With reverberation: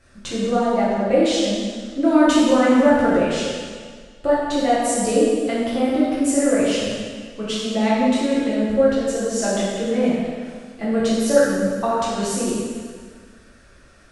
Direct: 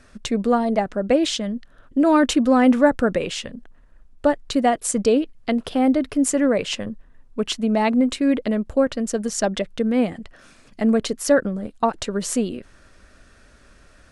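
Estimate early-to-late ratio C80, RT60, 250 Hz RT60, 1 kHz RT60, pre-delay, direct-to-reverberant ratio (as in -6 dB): 0.0 dB, 1.8 s, 1.7 s, 1.8 s, 4 ms, -9.0 dB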